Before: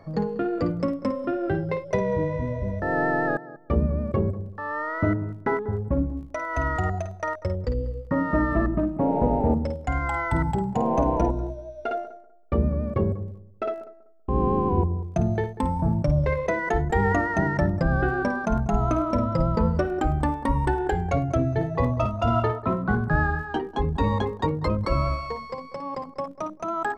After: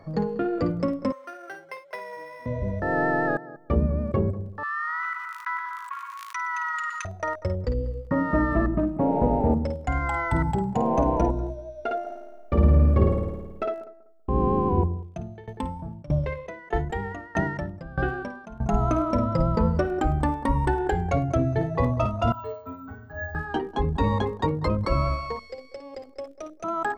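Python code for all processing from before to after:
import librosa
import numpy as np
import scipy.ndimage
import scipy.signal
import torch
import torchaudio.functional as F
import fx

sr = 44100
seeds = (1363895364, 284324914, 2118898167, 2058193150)

y = fx.chain(x, sr, fx.highpass(hz=1200.0, slope=12),
    fx.resample_linear(factor=6), at=(1.12, 2.46))
y = fx.chain(y, sr, fx.brickwall_highpass(low_hz=950.0),
    fx.echo_single(ms=119, db=-13.5),
    fx.env_flatten(amount_pct=70), at=(4.63, 7.05))
y = fx.chain(y, sr, fx.high_shelf(hz=4700.0, db=5.5),
    fx.room_flutter(wall_m=9.3, rt60_s=1.2), at=(12.01, 13.65))
y = fx.chain(y, sr, fx.peak_eq(hz=3000.0, db=7.0, octaves=0.61),
    fx.tremolo_decay(direction='decaying', hz=1.6, depth_db=21), at=(14.85, 18.62))
y = fx.chain(y, sr, fx.comb_fb(f0_hz=89.0, decay_s=0.43, harmonics='odd', damping=0.0, mix_pct=100),
    fx.resample_bad(factor=2, down='none', up='hold'), at=(22.32, 23.35))
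y = fx.chain(y, sr, fx.peak_eq(hz=160.0, db=-6.0, octaves=2.5),
    fx.fixed_phaser(hz=420.0, stages=4), at=(25.39, 26.64))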